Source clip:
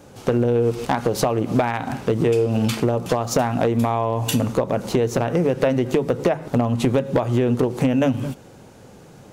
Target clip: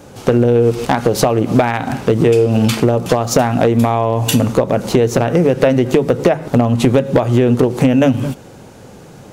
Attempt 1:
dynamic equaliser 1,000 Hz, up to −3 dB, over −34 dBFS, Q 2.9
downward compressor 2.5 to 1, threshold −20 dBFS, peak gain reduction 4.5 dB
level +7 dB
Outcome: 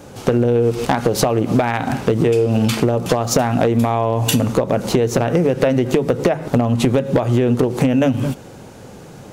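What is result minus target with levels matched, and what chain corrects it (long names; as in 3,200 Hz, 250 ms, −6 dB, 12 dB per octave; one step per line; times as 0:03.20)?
downward compressor: peak gain reduction +4.5 dB
dynamic equaliser 1,000 Hz, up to −3 dB, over −34 dBFS, Q 2.9
level +7 dB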